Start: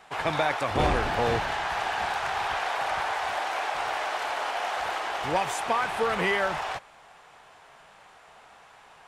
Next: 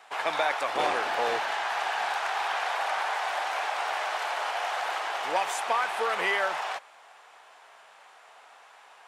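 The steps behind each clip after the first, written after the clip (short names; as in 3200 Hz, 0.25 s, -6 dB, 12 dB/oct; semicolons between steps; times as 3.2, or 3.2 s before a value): HPF 510 Hz 12 dB/oct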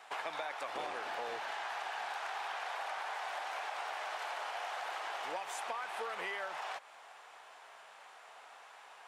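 compressor 5:1, threshold -36 dBFS, peak gain reduction 13 dB; gain -2 dB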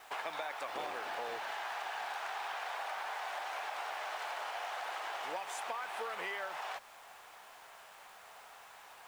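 bit-crush 10-bit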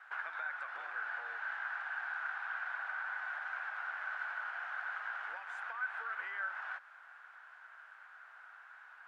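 band-pass 1500 Hz, Q 8.5; gain +10 dB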